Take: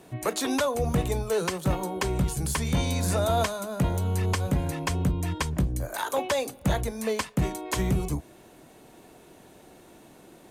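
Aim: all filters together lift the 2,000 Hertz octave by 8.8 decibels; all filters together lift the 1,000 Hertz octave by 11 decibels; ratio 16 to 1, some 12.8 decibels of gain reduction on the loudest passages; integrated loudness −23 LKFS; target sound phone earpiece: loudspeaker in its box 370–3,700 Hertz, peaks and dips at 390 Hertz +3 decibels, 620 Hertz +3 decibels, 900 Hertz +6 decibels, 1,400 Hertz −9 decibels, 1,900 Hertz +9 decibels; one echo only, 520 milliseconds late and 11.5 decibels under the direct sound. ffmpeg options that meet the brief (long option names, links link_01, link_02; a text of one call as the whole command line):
ffmpeg -i in.wav -af "equalizer=frequency=1000:width_type=o:gain=9,equalizer=frequency=2000:width_type=o:gain=4.5,acompressor=threshold=-30dB:ratio=16,highpass=370,equalizer=frequency=390:width_type=q:width=4:gain=3,equalizer=frequency=620:width_type=q:width=4:gain=3,equalizer=frequency=900:width_type=q:width=4:gain=6,equalizer=frequency=1400:width_type=q:width=4:gain=-9,equalizer=frequency=1900:width_type=q:width=4:gain=9,lowpass=frequency=3700:width=0.5412,lowpass=frequency=3700:width=1.3066,aecho=1:1:520:0.266,volume=11.5dB" out.wav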